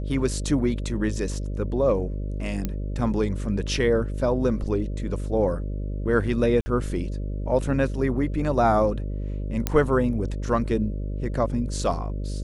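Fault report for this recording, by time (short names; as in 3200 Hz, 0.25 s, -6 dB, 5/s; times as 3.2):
buzz 50 Hz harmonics 12 -29 dBFS
2.65 pop -13 dBFS
6.61–6.66 gap 50 ms
9.67 pop -8 dBFS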